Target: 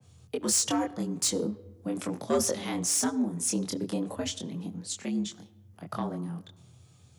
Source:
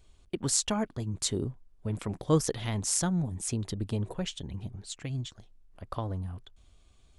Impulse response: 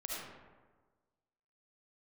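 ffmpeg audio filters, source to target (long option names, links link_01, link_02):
-filter_complex "[0:a]asplit=2[link_01][link_02];[link_02]highpass=110,lowpass=7700[link_03];[1:a]atrim=start_sample=2205[link_04];[link_03][link_04]afir=irnorm=-1:irlink=0,volume=-19dB[link_05];[link_01][link_05]amix=inputs=2:normalize=0,flanger=delay=22.5:depth=2.7:speed=0.41,acrossover=split=250|1600[link_06][link_07][link_08];[link_08]aexciter=amount=2.4:drive=3.6:freq=5000[link_09];[link_06][link_07][link_09]amix=inputs=3:normalize=0,asoftclip=type=tanh:threshold=-23.5dB,afreqshift=82,adynamicequalizer=threshold=0.00447:dfrequency=2100:dqfactor=0.7:tfrequency=2100:tqfactor=0.7:attack=5:release=100:ratio=0.375:range=1.5:mode=cutabove:tftype=highshelf,volume=5dB"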